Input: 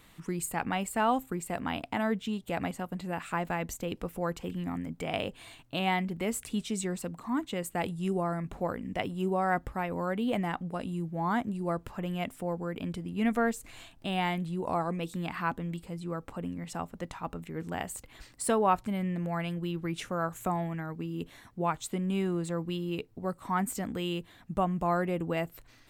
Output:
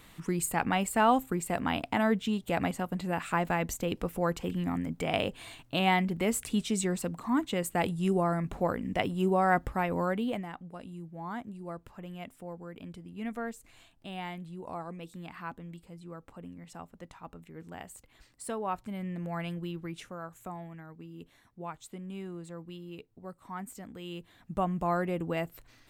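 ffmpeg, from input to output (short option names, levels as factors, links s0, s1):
-af "volume=9.44,afade=t=out:st=10.01:d=0.45:silence=0.251189,afade=t=in:st=18.63:d=0.87:silence=0.446684,afade=t=out:st=19.5:d=0.71:silence=0.375837,afade=t=in:st=23.99:d=0.68:silence=0.334965"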